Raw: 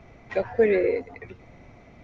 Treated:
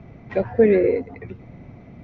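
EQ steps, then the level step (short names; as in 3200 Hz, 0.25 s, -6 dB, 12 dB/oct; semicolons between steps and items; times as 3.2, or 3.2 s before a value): air absorption 110 m; bell 160 Hz +11.5 dB 2.4 oct; 0.0 dB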